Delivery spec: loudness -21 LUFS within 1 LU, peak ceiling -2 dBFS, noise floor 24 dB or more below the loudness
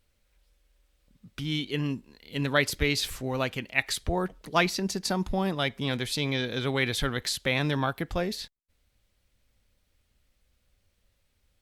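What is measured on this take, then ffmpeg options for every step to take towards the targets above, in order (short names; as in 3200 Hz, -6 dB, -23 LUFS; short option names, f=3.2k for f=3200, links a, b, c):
loudness -29.0 LUFS; peak -7.5 dBFS; loudness target -21.0 LUFS
-> -af "volume=8dB,alimiter=limit=-2dB:level=0:latency=1"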